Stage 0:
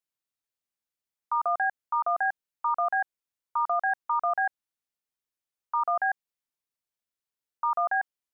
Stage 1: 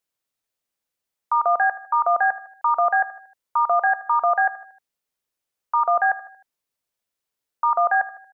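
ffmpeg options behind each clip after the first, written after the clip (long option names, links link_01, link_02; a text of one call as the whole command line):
ffmpeg -i in.wav -af "equalizer=frequency=540:width_type=o:width=0.77:gain=3.5,aecho=1:1:77|154|231|308:0.15|0.0733|0.0359|0.0176,volume=6.5dB" out.wav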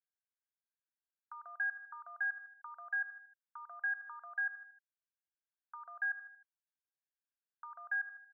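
ffmpeg -i in.wav -af "acompressor=threshold=-21dB:ratio=6,bandpass=frequency=1600:width_type=q:width=13:csg=0,volume=-5.5dB" out.wav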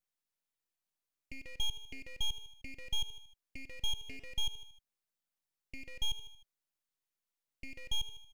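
ffmpeg -i in.wav -af "aeval=exprs='abs(val(0))':channel_layout=same,volume=5dB" out.wav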